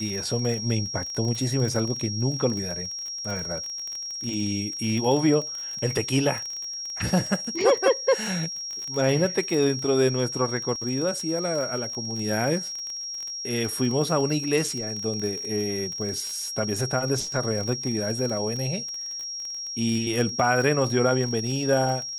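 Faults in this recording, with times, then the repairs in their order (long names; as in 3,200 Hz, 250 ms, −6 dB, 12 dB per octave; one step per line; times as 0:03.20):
surface crackle 30 per second −29 dBFS
whistle 5,600 Hz −31 dBFS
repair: click removal
notch filter 5,600 Hz, Q 30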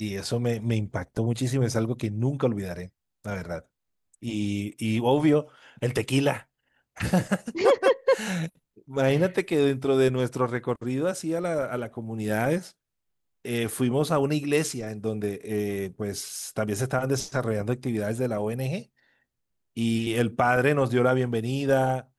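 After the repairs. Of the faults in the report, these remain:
none of them is left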